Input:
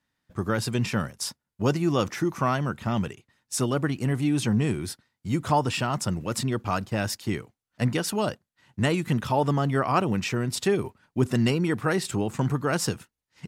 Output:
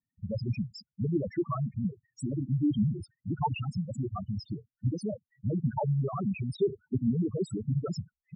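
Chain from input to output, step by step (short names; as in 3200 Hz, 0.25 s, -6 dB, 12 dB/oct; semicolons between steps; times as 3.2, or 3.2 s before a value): loudest bins only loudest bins 2; time stretch by phase-locked vocoder 0.62×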